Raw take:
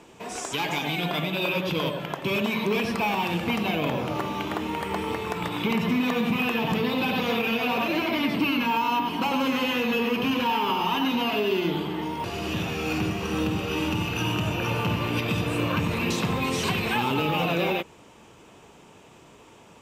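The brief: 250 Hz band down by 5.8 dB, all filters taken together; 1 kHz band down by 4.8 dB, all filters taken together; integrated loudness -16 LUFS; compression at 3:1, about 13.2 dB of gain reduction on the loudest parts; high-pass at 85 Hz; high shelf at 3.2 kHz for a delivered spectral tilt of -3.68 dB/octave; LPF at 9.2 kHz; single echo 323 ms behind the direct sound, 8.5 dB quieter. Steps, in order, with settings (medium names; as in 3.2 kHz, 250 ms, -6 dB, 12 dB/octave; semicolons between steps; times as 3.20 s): high-pass 85 Hz; low-pass 9.2 kHz; peaking EQ 250 Hz -7 dB; peaking EQ 1 kHz -4.5 dB; treble shelf 3.2 kHz -8.5 dB; compression 3:1, threshold -44 dBFS; delay 323 ms -8.5 dB; trim +26 dB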